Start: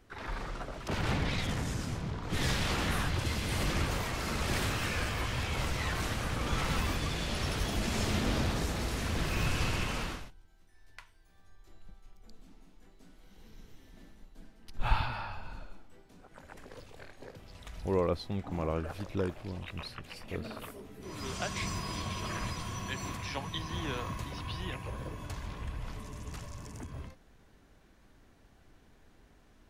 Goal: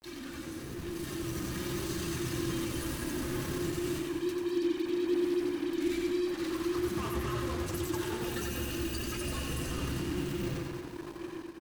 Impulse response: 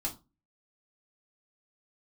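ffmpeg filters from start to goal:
-filter_complex "[0:a]flanger=delay=8.7:depth=4.7:regen=-32:speed=0.13:shape=triangular[s0];[1:a]atrim=start_sample=2205,asetrate=37044,aresample=44100[s1];[s0][s1]afir=irnorm=-1:irlink=0,acompressor=threshold=0.0178:ratio=8,alimiter=level_in=4.22:limit=0.0631:level=0:latency=1:release=121,volume=0.237,asetrate=50951,aresample=44100,atempo=0.865537,afreqshift=-140,acrusher=bits=7:mix=0:aa=0.5,asetrate=112896,aresample=44100,dynaudnorm=f=740:g=3:m=2.37,aecho=1:1:90|198|327.6|483.1|669.7:0.631|0.398|0.251|0.158|0.1"

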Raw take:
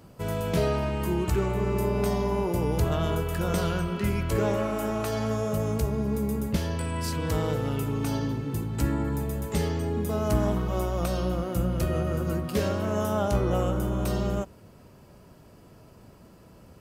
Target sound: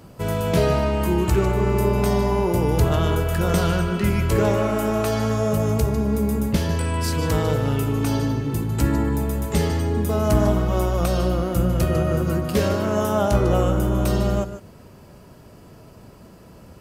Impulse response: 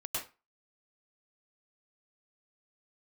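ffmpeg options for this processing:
-filter_complex "[0:a]asplit=2[s0][s1];[1:a]atrim=start_sample=2205,atrim=end_sample=4410,asetrate=28665,aresample=44100[s2];[s1][s2]afir=irnorm=-1:irlink=0,volume=0.447[s3];[s0][s3]amix=inputs=2:normalize=0,volume=1.5"

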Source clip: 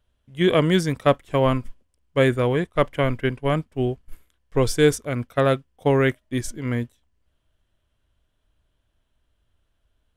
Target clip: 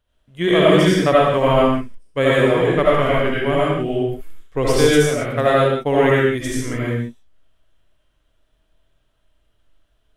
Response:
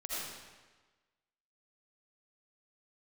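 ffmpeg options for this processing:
-filter_complex "[0:a]bass=f=250:g=-3,treble=f=4000:g=-1[s0];[1:a]atrim=start_sample=2205,afade=t=out:st=0.33:d=0.01,atrim=end_sample=14994[s1];[s0][s1]afir=irnorm=-1:irlink=0,volume=1.68"

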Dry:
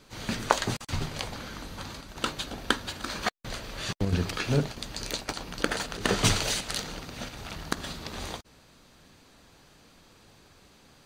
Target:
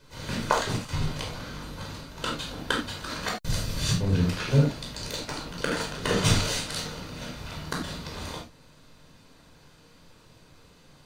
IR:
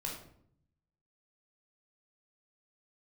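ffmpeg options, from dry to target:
-filter_complex "[0:a]asettb=1/sr,asplit=3[s0][s1][s2];[s0]atrim=end=3.284[s3];[s1]atrim=start=3.28:end=3.97,asetpts=PTS-STARTPTS,afade=t=in:d=0.004:c=qsin,afade=t=out:st=0.686:d=0.004:c=qsin,bass=f=250:g=11,treble=f=4000:g=11[s4];[s2]atrim=start=3.966[s5];[s3][s4]acrossfade=d=0.004:c1=hsin:c2=qsin[s6];[s6][s5]acrossfade=d=0.004:c1=qsin:c2=hsin[s7];[1:a]atrim=start_sample=2205,atrim=end_sample=4410[s8];[s7][s8]afir=irnorm=-1:irlink=0"

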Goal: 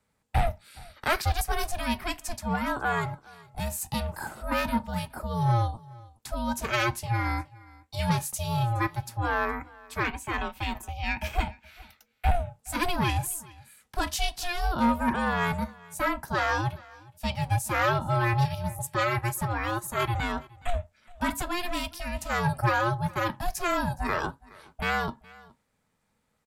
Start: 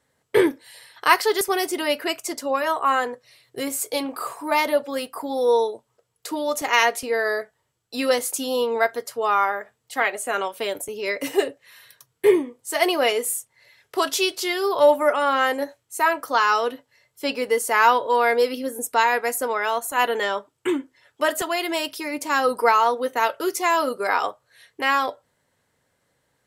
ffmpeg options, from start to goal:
-filter_complex "[0:a]aeval=exprs='val(0)*sin(2*PI*350*n/s)':c=same,acrossover=split=230|560|4700[s0][s1][s2][s3];[s0]acontrast=62[s4];[s1]asoftclip=type=hard:threshold=0.0335[s5];[s4][s5][s2][s3]amix=inputs=4:normalize=0,asettb=1/sr,asplit=3[s6][s7][s8];[s6]atrim=end=10.114[s9];[s7]atrim=start=10.11:end=12.29,asetpts=PTS-STARTPTS,afade=t=in:d=0.004:c=qsin,afade=t=out:st=2.176:d=0.004:c=qsin,equalizer=f=160:t=o:w=0.67:g=-9,equalizer=f=2500:t=o:w=0.67:g=6,equalizer=f=10000:t=o:w=0.67:g=-9[s10];[s8]atrim=start=12.286[s11];[s9][s10]acrossfade=d=0.004:c1=hsin:c2=qsin[s12];[s12][s11]acrossfade=d=0.004:c1=qsin:c2=hsin,asoftclip=type=tanh:threshold=0.237,aecho=1:1:418:0.0708,volume=0.668"

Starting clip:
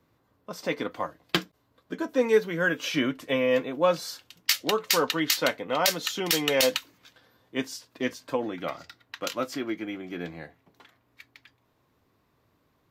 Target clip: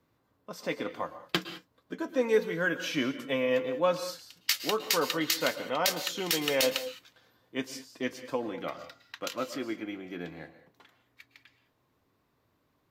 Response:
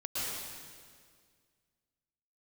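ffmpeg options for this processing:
-filter_complex "[0:a]asplit=2[s0][s1];[s1]highpass=120[s2];[1:a]atrim=start_sample=2205,afade=t=out:st=0.27:d=0.01,atrim=end_sample=12348[s3];[s2][s3]afir=irnorm=-1:irlink=0,volume=0.237[s4];[s0][s4]amix=inputs=2:normalize=0,volume=0.562"

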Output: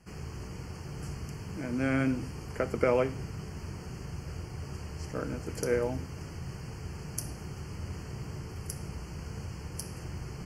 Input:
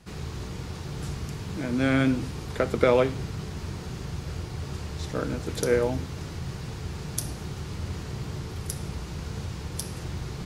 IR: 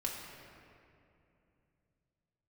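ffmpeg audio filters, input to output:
-af "asuperstop=centerf=3700:order=8:qfactor=3,volume=0.531"

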